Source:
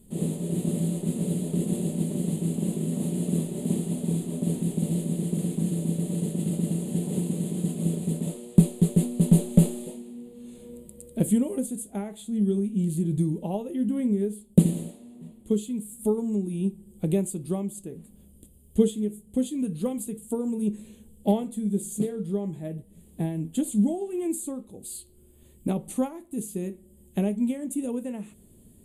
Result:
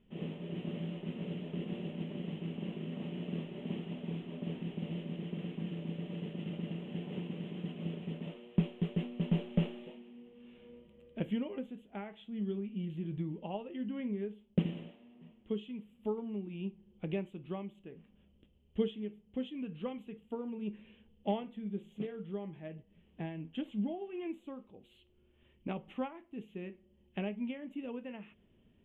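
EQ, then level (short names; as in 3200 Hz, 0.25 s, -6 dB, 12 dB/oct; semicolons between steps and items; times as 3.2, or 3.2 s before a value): elliptic low-pass 3000 Hz, stop band 40 dB; tilt shelf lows -8 dB; -4.5 dB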